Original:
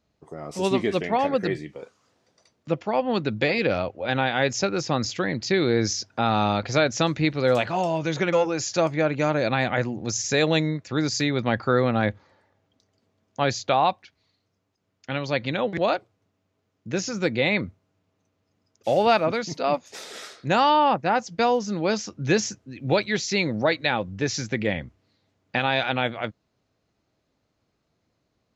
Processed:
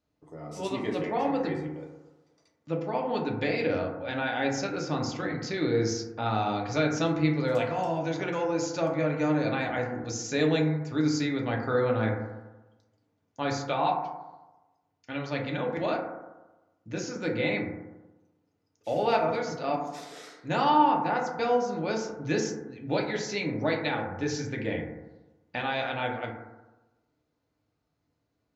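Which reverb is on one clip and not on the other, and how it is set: FDN reverb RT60 1.1 s, low-frequency decay 1×, high-frequency decay 0.25×, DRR -1 dB; gain -9.5 dB

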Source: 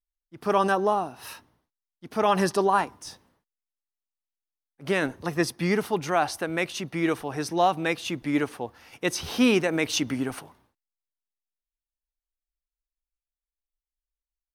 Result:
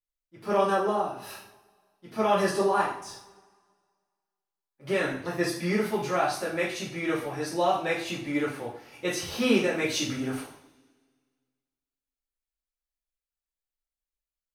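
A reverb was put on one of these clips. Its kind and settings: two-slope reverb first 0.5 s, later 1.8 s, from -22 dB, DRR -8 dB; gain -10 dB

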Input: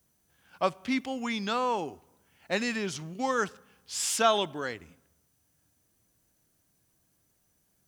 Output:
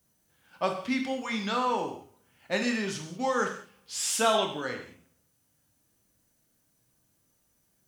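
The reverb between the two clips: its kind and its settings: non-linear reverb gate 0.23 s falling, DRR 2 dB; gain -1.5 dB

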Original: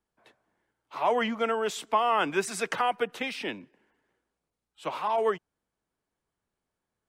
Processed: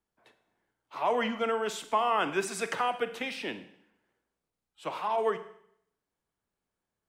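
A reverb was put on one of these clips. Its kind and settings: Schroeder reverb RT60 0.69 s, combs from 33 ms, DRR 10.5 dB; gain -2.5 dB

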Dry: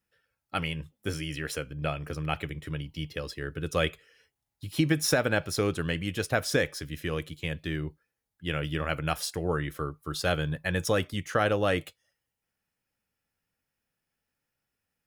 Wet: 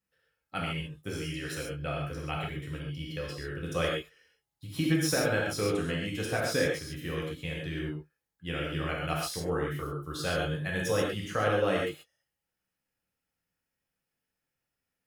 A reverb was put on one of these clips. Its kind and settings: non-linear reverb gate 0.16 s flat, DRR -3.5 dB; gain -7 dB

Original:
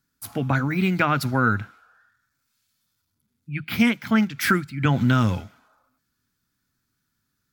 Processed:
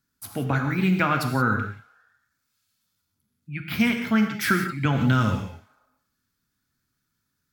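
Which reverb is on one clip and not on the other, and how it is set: non-linear reverb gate 0.2 s flat, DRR 4.5 dB; gain -2.5 dB

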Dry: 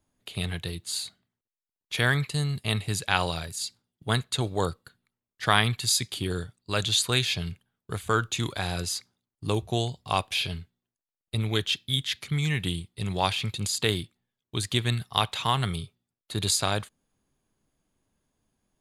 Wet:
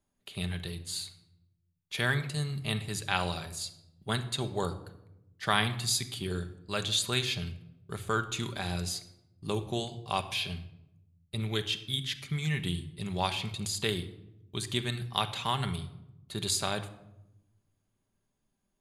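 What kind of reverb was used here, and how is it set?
shoebox room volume 3100 m³, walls furnished, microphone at 1.2 m; gain -5.5 dB

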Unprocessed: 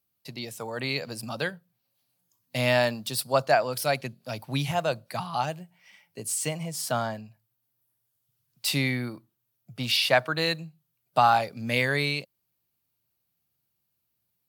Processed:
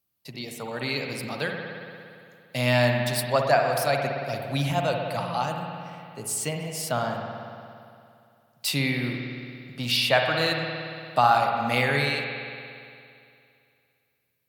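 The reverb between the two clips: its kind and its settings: spring tank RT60 2.5 s, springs 57 ms, chirp 45 ms, DRR 2 dB

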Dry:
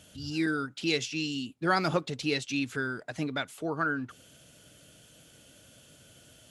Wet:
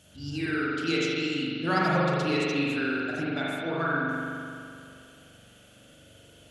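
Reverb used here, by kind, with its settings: spring tank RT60 2.4 s, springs 42 ms, chirp 50 ms, DRR -6.5 dB; gain -3.5 dB

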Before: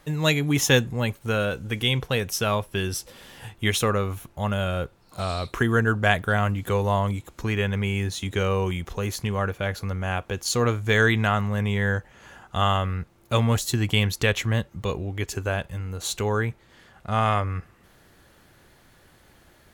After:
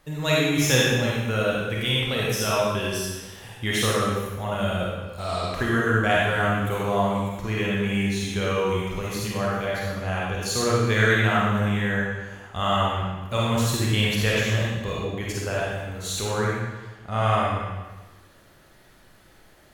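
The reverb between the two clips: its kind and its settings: digital reverb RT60 1.2 s, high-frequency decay 0.95×, pre-delay 10 ms, DRR -5.5 dB; gain -5 dB

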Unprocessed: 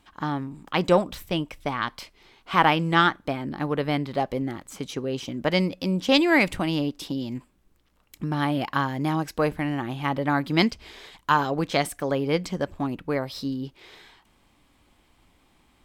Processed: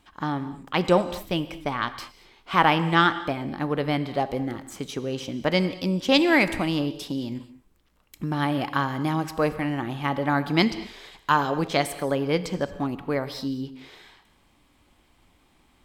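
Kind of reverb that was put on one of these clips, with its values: non-linear reverb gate 0.25 s flat, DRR 12 dB

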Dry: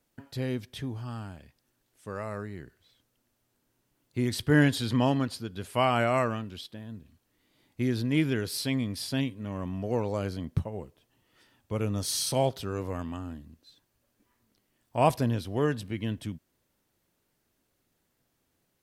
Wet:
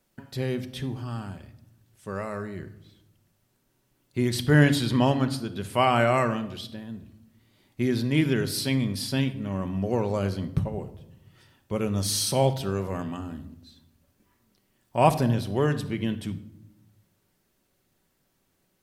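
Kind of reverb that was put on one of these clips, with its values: shoebox room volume 2400 m³, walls furnished, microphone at 1.1 m; gain +3 dB

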